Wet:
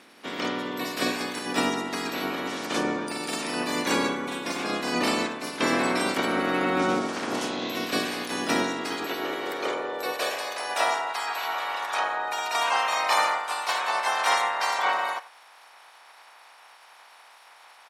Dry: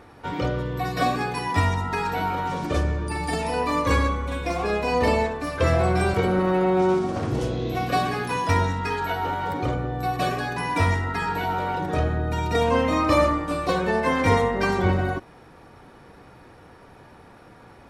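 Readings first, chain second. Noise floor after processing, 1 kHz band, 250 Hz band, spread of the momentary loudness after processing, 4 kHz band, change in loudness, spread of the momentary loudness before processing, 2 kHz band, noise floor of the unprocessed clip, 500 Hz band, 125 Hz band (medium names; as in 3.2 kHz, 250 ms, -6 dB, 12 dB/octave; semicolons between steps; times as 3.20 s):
-52 dBFS, -2.0 dB, -3.5 dB, 7 LU, +5.0 dB, -3.0 dB, 7 LU, +0.5 dB, -49 dBFS, -6.0 dB, -18.5 dB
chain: spectral peaks clipped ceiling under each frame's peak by 24 dB; high-pass sweep 250 Hz -> 840 Hz, 8.63–11.23 s; speakerphone echo 90 ms, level -17 dB; trim -5.5 dB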